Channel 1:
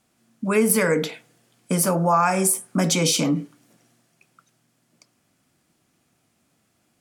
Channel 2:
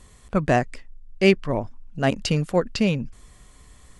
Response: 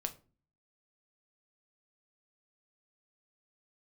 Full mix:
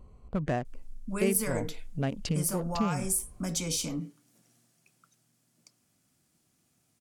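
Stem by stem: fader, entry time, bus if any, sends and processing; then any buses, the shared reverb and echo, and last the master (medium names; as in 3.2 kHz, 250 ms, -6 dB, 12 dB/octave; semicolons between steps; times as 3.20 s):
-9.0 dB, 0.65 s, no send, tone controls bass +5 dB, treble +8 dB; auto duck -7 dB, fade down 1.60 s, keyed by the second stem
+0.5 dB, 0.00 s, no send, local Wiener filter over 25 samples; harmonic-percussive split percussive -7 dB; compression 6:1, threshold -27 dBFS, peak gain reduction 14.5 dB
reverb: none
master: none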